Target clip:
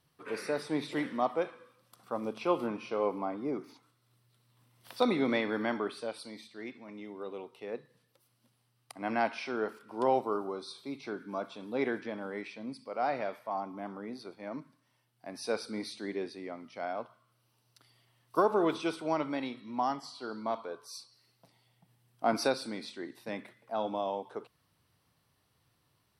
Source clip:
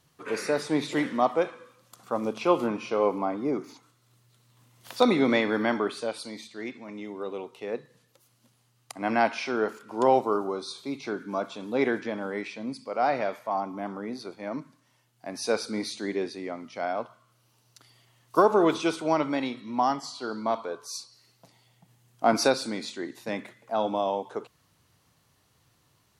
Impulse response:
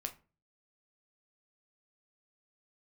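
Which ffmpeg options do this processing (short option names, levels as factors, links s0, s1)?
-af "equalizer=f=6800:w=6.3:g=-15,volume=0.473"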